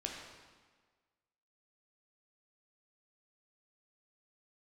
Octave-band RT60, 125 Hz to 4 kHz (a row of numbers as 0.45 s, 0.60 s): 1.4 s, 1.5 s, 1.5 s, 1.5 s, 1.4 s, 1.2 s